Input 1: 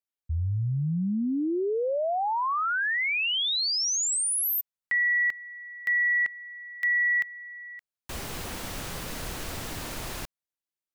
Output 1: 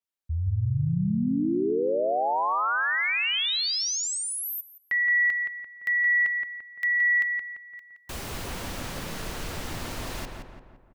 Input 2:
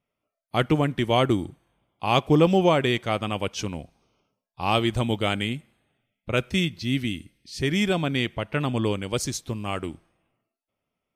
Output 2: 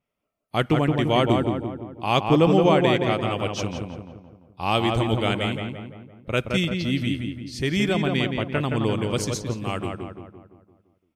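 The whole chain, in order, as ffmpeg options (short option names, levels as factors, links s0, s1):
-filter_complex "[0:a]asplit=2[s0][s1];[s1]adelay=171,lowpass=f=2100:p=1,volume=0.668,asplit=2[s2][s3];[s3]adelay=171,lowpass=f=2100:p=1,volume=0.52,asplit=2[s4][s5];[s5]adelay=171,lowpass=f=2100:p=1,volume=0.52,asplit=2[s6][s7];[s7]adelay=171,lowpass=f=2100:p=1,volume=0.52,asplit=2[s8][s9];[s9]adelay=171,lowpass=f=2100:p=1,volume=0.52,asplit=2[s10][s11];[s11]adelay=171,lowpass=f=2100:p=1,volume=0.52,asplit=2[s12][s13];[s13]adelay=171,lowpass=f=2100:p=1,volume=0.52[s14];[s0][s2][s4][s6][s8][s10][s12][s14]amix=inputs=8:normalize=0,adynamicequalizer=threshold=0.00631:dfrequency=7400:dqfactor=0.7:tfrequency=7400:tqfactor=0.7:attack=5:release=100:ratio=0.375:range=3:mode=cutabove:tftype=highshelf"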